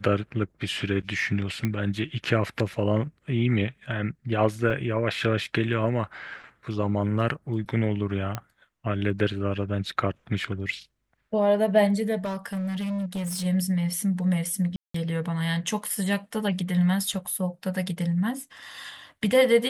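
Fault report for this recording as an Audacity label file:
1.650000	1.650000	click −14 dBFS
4.700000	4.700000	drop-out 4.7 ms
8.350000	8.350000	click −15 dBFS
12.240000	13.460000	clipping −26.5 dBFS
14.760000	14.940000	drop-out 184 ms

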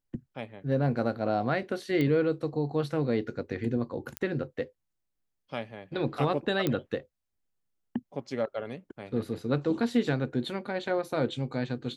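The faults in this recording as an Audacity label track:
2.010000	2.010000	click −18 dBFS
4.170000	4.170000	click −15 dBFS
6.670000	6.670000	click −14 dBFS

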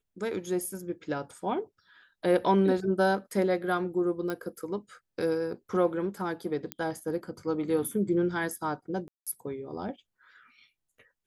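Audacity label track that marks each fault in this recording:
4.300000	4.300000	click −20 dBFS
6.720000	6.720000	click −16 dBFS
9.080000	9.270000	drop-out 186 ms

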